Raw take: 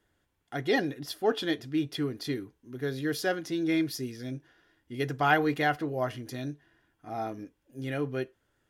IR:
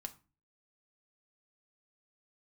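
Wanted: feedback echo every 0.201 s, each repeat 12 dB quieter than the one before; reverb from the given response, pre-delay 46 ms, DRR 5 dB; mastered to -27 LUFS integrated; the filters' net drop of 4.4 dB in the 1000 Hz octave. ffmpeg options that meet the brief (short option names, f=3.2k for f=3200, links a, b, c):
-filter_complex "[0:a]equalizer=f=1k:t=o:g=-7,aecho=1:1:201|402|603:0.251|0.0628|0.0157,asplit=2[a][b];[1:a]atrim=start_sample=2205,adelay=46[c];[b][c]afir=irnorm=-1:irlink=0,volume=-1.5dB[d];[a][d]amix=inputs=2:normalize=0,volume=4dB"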